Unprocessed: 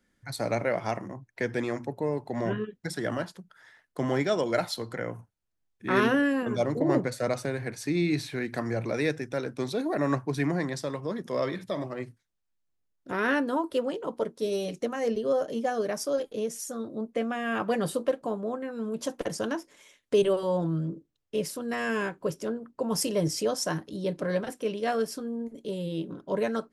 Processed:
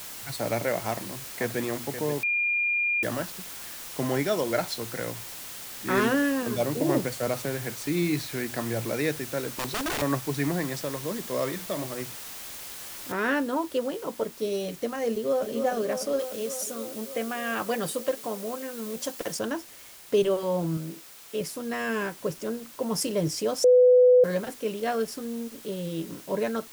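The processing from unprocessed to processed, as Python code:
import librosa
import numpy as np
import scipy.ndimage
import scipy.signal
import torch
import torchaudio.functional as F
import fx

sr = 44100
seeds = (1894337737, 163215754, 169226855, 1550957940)

y = fx.echo_throw(x, sr, start_s=0.87, length_s=0.73, ms=530, feedback_pct=15, wet_db=-10.0)
y = fx.cvsd(y, sr, bps=64000, at=(5.94, 7.45))
y = fx.overflow_wrap(y, sr, gain_db=24.5, at=(9.51, 10.02))
y = fx.noise_floor_step(y, sr, seeds[0], at_s=13.12, before_db=-40, after_db=-48, tilt_db=0.0)
y = fx.echo_throw(y, sr, start_s=15.12, length_s=0.42, ms=300, feedback_pct=80, wet_db=-6.0)
y = fx.tilt_eq(y, sr, slope=1.5, at=(16.19, 19.39))
y = fx.low_shelf(y, sr, hz=160.0, db=-11.5, at=(20.77, 21.41))
y = fx.edit(y, sr, fx.bleep(start_s=2.23, length_s=0.8, hz=2410.0, db=-22.5),
    fx.bleep(start_s=23.64, length_s=0.6, hz=499.0, db=-13.0), tone=tone)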